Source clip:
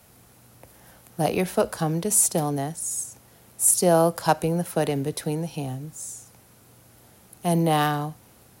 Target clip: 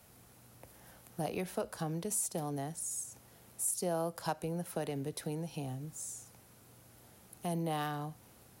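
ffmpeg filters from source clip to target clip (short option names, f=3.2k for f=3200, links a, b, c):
-af "acompressor=threshold=-33dB:ratio=2,volume=-6dB"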